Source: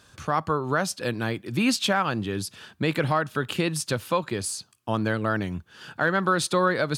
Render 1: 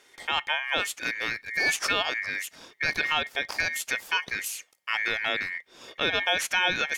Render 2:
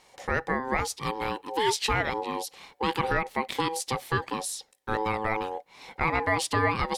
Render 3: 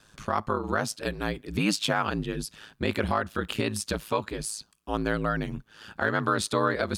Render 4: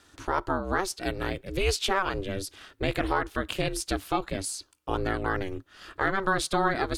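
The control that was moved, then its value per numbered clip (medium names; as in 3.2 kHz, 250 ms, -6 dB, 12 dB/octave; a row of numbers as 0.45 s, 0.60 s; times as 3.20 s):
ring modulator, frequency: 2 kHz, 650 Hz, 54 Hz, 190 Hz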